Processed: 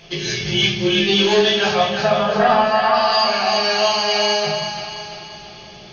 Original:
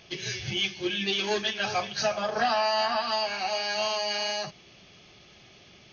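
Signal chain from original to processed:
0:01.71–0:02.94: low-pass filter 2,400 Hz 12 dB per octave
echo with a time of its own for lows and highs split 510 Hz, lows 137 ms, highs 340 ms, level −7 dB
convolution reverb RT60 0.70 s, pre-delay 6 ms, DRR −2.5 dB
level +6 dB

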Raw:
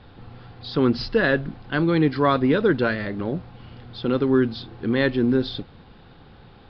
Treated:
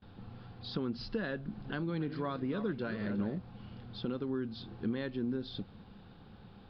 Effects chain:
0:01.35–0:03.38: feedback delay that plays each chunk backwards 182 ms, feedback 49%, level −12 dB
downward compressor 3 to 1, threshold −28 dBFS, peak gain reduction 11 dB
thirty-one-band graphic EQ 100 Hz +4 dB, 200 Hz +10 dB, 2,000 Hz −4 dB
noise gate with hold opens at −38 dBFS
level −8.5 dB

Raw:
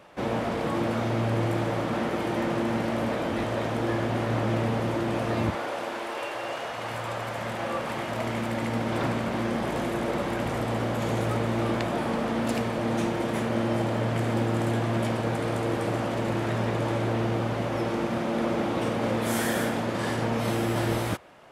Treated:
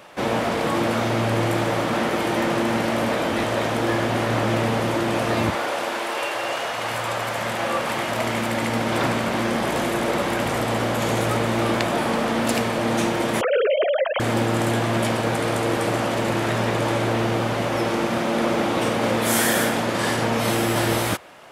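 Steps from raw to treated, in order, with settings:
0:13.41–0:14.20: three sine waves on the formant tracks
spectral tilt +1.5 dB per octave
level +7 dB

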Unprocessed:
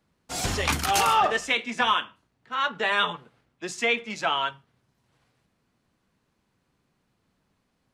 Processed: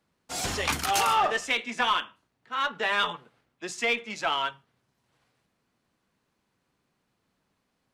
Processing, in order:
low-shelf EQ 200 Hz −6.5 dB
in parallel at −4 dB: asymmetric clip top −24 dBFS
on the sum: level −5.5 dB

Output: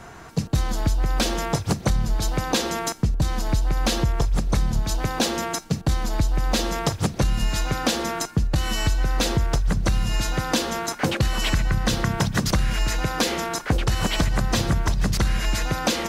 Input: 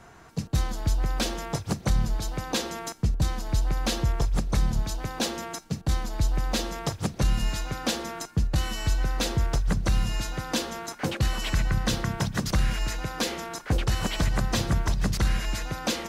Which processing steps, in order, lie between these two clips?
downward compressor, threshold −26 dBFS, peak gain reduction 8 dB
level +8.5 dB

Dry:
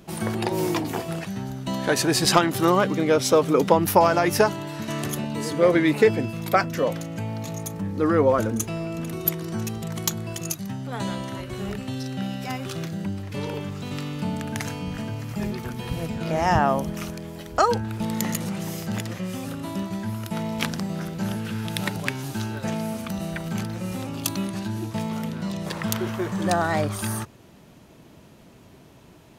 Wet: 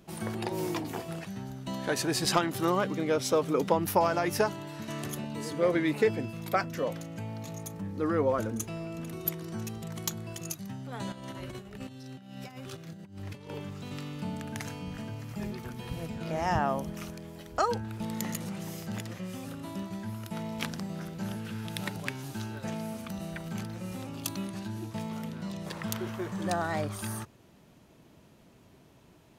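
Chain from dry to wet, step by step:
0:11.12–0:13.50: compressor whose output falls as the input rises −34 dBFS, ratio −0.5
level −8 dB

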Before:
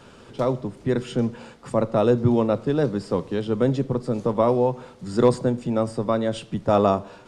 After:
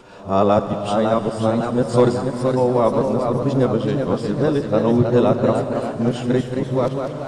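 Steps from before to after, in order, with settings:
played backwards from end to start
reverb whose tail is shaped and stops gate 450 ms flat, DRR 9 dB
delay with pitch and tempo change per echo 582 ms, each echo +1 semitone, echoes 3, each echo −6 dB
level +2.5 dB

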